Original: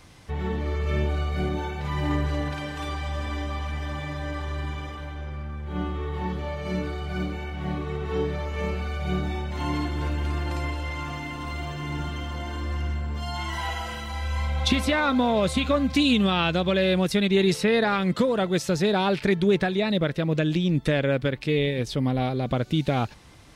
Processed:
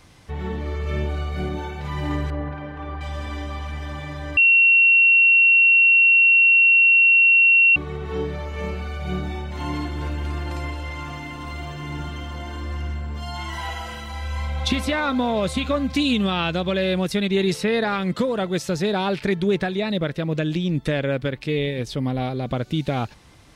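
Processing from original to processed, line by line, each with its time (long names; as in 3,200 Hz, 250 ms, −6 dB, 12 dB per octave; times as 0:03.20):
0:02.30–0:03.01: low-pass filter 1,600 Hz
0:04.37–0:07.76: beep over 2,730 Hz −11 dBFS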